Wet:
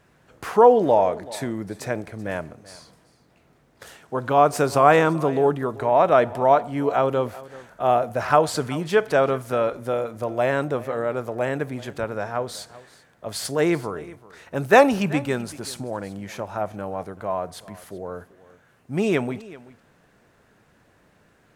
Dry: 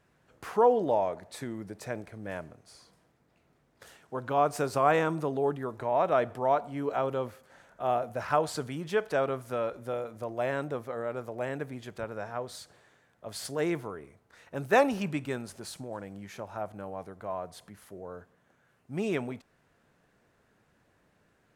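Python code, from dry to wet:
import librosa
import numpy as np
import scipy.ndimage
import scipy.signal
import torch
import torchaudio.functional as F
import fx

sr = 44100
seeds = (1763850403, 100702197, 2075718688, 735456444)

y = x + 10.0 ** (-19.5 / 20.0) * np.pad(x, (int(383 * sr / 1000.0), 0))[:len(x)]
y = y * 10.0 ** (9.0 / 20.0)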